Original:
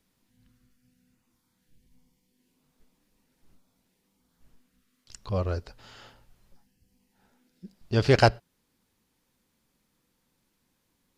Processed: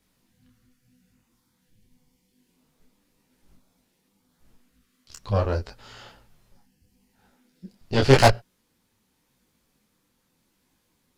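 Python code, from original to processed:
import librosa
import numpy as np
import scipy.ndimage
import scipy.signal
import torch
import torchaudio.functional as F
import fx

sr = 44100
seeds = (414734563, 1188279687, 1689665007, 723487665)

y = fx.cheby_harmonics(x, sr, harmonics=(5, 8), levels_db=(-19, -13), full_scale_db=-4.0)
y = fx.detune_double(y, sr, cents=29)
y = y * librosa.db_to_amplitude(3.5)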